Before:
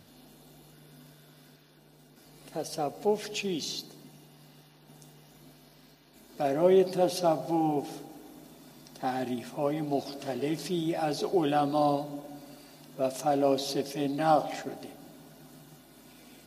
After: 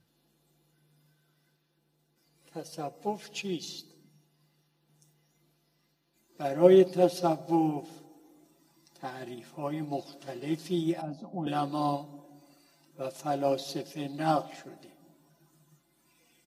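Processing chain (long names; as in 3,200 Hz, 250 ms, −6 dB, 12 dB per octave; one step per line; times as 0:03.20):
0:11.01–0:11.47: drawn EQ curve 150 Hz 0 dB, 260 Hz +10 dB, 370 Hz −19 dB, 630 Hz +1 dB, 1,800 Hz −16 dB
noise reduction from a noise print of the clip's start 8 dB
notch filter 660 Hz, Q 12
comb filter 5.9 ms, depth 60%
expander for the loud parts 1.5 to 1, over −38 dBFS
level +2 dB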